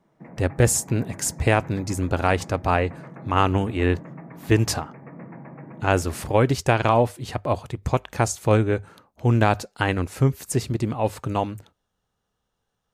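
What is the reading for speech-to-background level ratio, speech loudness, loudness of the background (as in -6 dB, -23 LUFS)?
18.5 dB, -23.5 LUFS, -42.0 LUFS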